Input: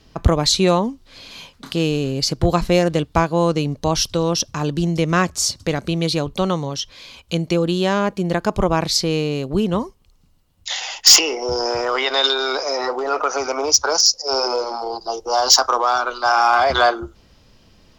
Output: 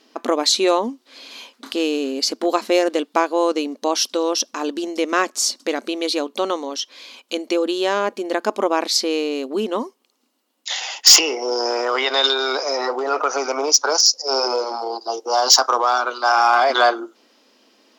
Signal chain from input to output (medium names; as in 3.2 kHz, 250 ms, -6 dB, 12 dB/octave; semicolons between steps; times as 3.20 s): brick-wall FIR high-pass 220 Hz